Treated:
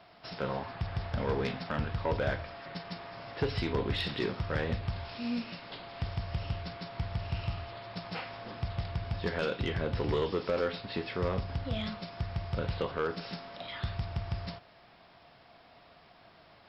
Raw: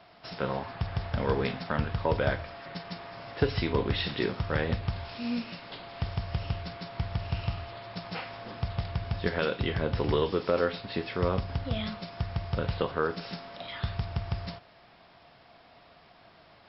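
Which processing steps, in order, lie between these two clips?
saturation -20.5 dBFS, distortion -15 dB; trim -1.5 dB

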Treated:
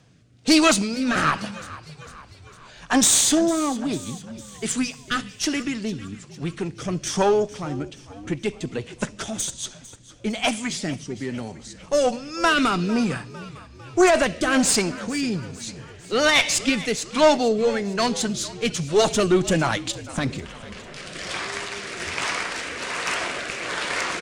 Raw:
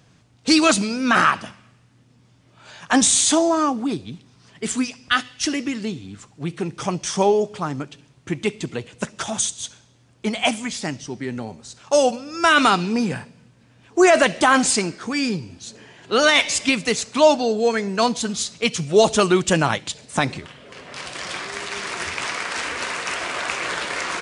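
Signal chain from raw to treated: single-diode clipper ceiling -14 dBFS; rotary cabinet horn 1.2 Hz; frequency-shifting echo 452 ms, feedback 55%, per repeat -54 Hz, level -17.5 dB; trim +2 dB

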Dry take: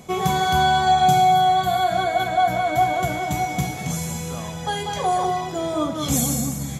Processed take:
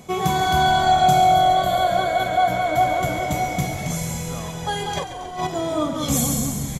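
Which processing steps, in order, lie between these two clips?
4.97–5.47 s: compressor with a negative ratio -28 dBFS, ratio -0.5; on a send: frequency-shifting echo 138 ms, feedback 64%, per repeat -43 Hz, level -11 dB

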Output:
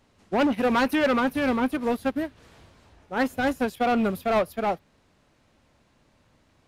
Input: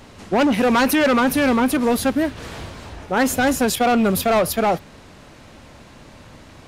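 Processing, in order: dynamic bell 7.1 kHz, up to -6 dB, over -41 dBFS, Q 1; upward expansion 2.5:1, over -25 dBFS; trim -3.5 dB

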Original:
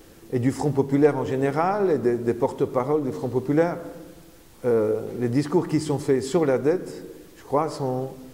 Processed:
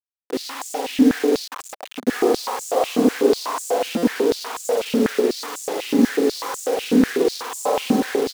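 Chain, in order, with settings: knee-point frequency compression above 3 kHz 1.5:1; comb 3.9 ms, depth 87%; bands offset in time lows, highs 210 ms, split 2.5 kHz; spring tank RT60 1.4 s, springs 44 ms, chirp 35 ms, DRR -4 dB; compression 20:1, threshold -18 dBFS, peak gain reduction 14.5 dB; ever faster or slower copies 473 ms, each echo -1 st, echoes 3; 1.46–2.07 s: gate -16 dBFS, range -17 dB; bit crusher 5-bit; buffer glitch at 3.97 s, samples 256, times 9; step-sequenced high-pass 8.1 Hz 230–7300 Hz; trim -2 dB

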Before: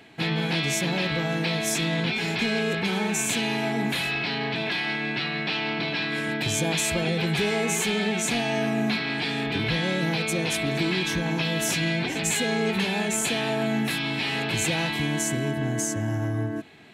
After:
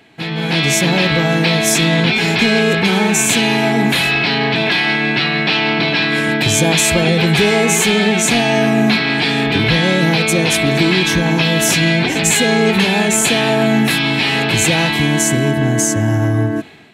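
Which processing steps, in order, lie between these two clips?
level rider gain up to 10.5 dB; trim +2 dB

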